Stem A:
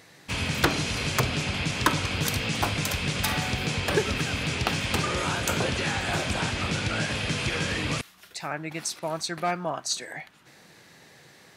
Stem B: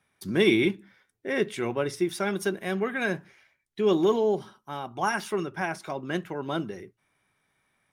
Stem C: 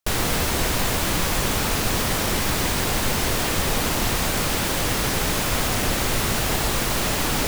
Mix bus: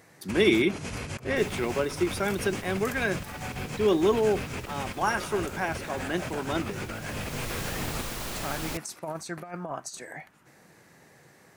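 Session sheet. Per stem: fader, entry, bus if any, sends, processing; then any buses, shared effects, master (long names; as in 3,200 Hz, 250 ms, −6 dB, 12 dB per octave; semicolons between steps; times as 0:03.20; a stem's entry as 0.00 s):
−4.0 dB, 0.00 s, no send, compressor whose output falls as the input rises −30 dBFS, ratio −0.5; parametric band 3,700 Hz −11 dB 1.2 octaves
0.0 dB, 0.00 s, no send, high-pass filter 170 Hz
−12.0 dB, 1.30 s, no send, automatic ducking −13 dB, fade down 1.90 s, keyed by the second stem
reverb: not used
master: no processing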